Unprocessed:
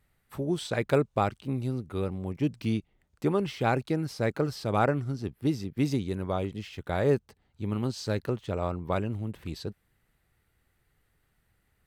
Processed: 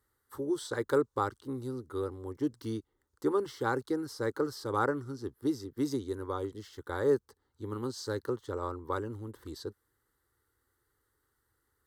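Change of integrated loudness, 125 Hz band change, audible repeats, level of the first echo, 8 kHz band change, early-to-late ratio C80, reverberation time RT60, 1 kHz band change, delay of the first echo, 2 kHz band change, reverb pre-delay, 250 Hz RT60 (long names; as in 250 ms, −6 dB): −4.0 dB, −11.0 dB, no echo audible, no echo audible, −1.5 dB, no reverb audible, no reverb audible, −3.5 dB, no echo audible, −4.0 dB, no reverb audible, no reverb audible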